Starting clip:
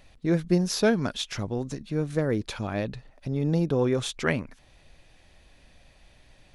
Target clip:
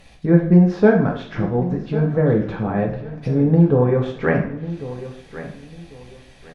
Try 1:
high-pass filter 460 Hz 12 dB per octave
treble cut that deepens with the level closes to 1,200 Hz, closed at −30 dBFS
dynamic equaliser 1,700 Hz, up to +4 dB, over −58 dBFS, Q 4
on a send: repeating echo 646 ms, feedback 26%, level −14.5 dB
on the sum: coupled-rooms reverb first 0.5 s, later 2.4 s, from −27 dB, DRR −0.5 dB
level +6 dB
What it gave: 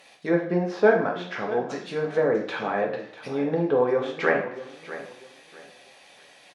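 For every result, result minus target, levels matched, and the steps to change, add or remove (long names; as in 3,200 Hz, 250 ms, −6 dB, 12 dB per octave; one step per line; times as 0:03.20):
echo 451 ms early; 500 Hz band +4.0 dB
change: repeating echo 1,097 ms, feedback 26%, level −14.5 dB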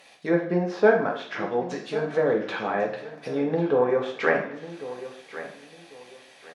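500 Hz band +4.0 dB
remove: high-pass filter 460 Hz 12 dB per octave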